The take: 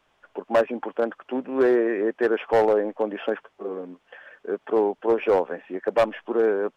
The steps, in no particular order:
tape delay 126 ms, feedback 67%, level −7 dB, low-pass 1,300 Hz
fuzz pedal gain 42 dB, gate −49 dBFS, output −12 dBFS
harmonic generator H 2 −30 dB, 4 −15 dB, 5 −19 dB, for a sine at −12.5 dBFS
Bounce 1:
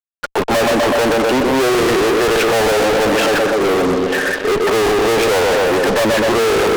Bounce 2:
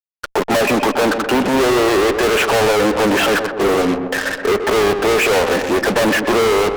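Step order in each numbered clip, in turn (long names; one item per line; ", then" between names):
tape delay, then harmonic generator, then fuzz pedal
fuzz pedal, then tape delay, then harmonic generator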